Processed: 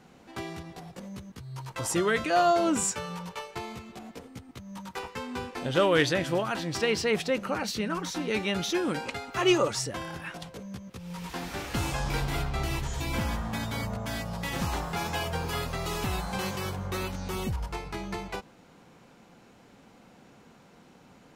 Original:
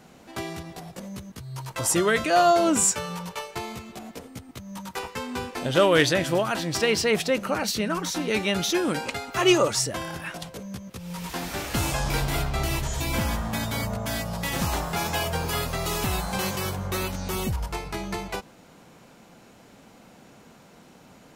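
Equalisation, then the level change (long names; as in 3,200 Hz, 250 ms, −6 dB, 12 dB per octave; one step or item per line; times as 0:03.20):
high-shelf EQ 7,200 Hz −8.5 dB
notch filter 630 Hz, Q 13
−3.5 dB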